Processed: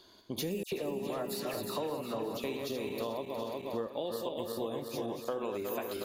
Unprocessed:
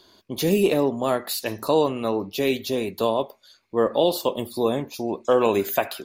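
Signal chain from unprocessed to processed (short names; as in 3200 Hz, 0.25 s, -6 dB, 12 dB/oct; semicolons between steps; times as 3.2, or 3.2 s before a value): regenerating reverse delay 0.181 s, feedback 72%, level -5.5 dB; 0.63–2.44 dispersion lows, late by 91 ms, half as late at 2300 Hz; compressor 6:1, threshold -29 dBFS, peak gain reduction 15 dB; gain -4.5 dB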